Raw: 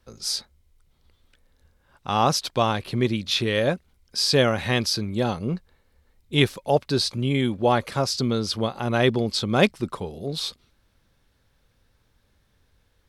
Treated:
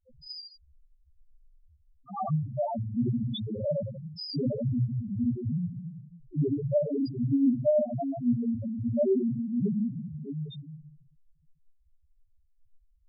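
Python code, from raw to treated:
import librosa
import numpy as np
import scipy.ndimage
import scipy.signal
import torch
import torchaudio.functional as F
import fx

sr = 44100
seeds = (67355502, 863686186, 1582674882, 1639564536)

y = fx.room_shoebox(x, sr, seeds[0], volume_m3=310.0, walls='mixed', distance_m=2.7)
y = fx.spec_topn(y, sr, count=1)
y = y * 10.0 ** (-5.5 / 20.0)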